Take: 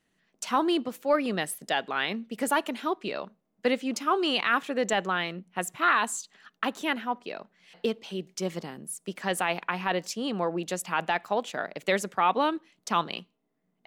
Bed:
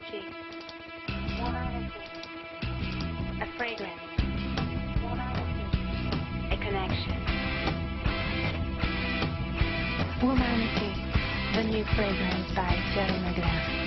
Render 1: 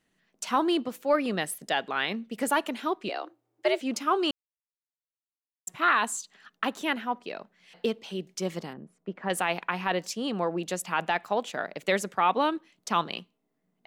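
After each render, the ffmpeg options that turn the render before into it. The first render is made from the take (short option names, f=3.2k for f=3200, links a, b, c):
-filter_complex "[0:a]asettb=1/sr,asplit=3[a][b][c];[a]atrim=end=3.094[d];[b]atrim=start=3.09:end=3.81,asetpts=PTS-STARTPTS,afade=t=in:d=0.004:c=qsin,afade=t=out:st=0.716:d=0.004:c=qsin,afreqshift=120[e];[c]atrim=start=3.806[f];[d][e]acrossfade=d=0.004:c1=hsin:c2=qsin[g];[g][f]acrossfade=d=0.004:c1=qsin:c2=hsin,asettb=1/sr,asplit=3[h][i][j];[h]atrim=end=8.734[k];[i]atrim=start=8.73:end=9.3,asetpts=PTS-STARTPTS,afade=t=in:d=0.004:c=qsin,afade=t=out:st=0.566:d=0.004:c=qsin,lowpass=1.5k[l];[j]atrim=start=9.296[m];[k][l]acrossfade=d=0.004:c1=hsin:c2=qsin[n];[n][m]acrossfade=d=0.004:c1=qsin:c2=hsin,asplit=3[o][p][q];[o]atrim=end=4.31,asetpts=PTS-STARTPTS,afade=t=out:st=4.306:d=0.004:c=hsin[r];[p]atrim=start=4.31:end=5.67,asetpts=PTS-STARTPTS,volume=0[s];[q]atrim=start=5.67,asetpts=PTS-STARTPTS,afade=t=in:d=0.004:c=hsin[t];[r][s][t]concat=n=3:v=0:a=1"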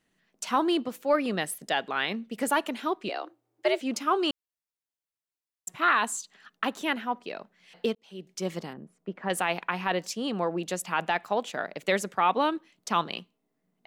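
-filter_complex "[0:a]asplit=2[a][b];[a]atrim=end=7.95,asetpts=PTS-STARTPTS,afade=t=out:st=7.946:d=0.004:c=hsin[c];[b]atrim=start=7.95,asetpts=PTS-STARTPTS,afade=t=in:d=0.53[d];[c][d]concat=n=2:v=0:a=1"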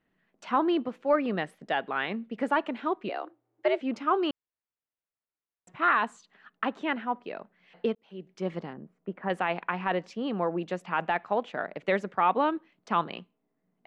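-af "lowpass=2.2k"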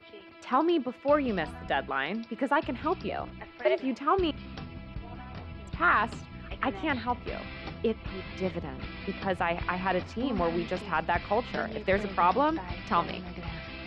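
-filter_complex "[1:a]volume=-10.5dB[a];[0:a][a]amix=inputs=2:normalize=0"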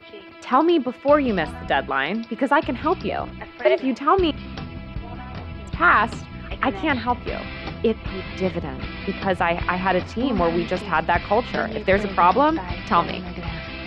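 -af "volume=8dB"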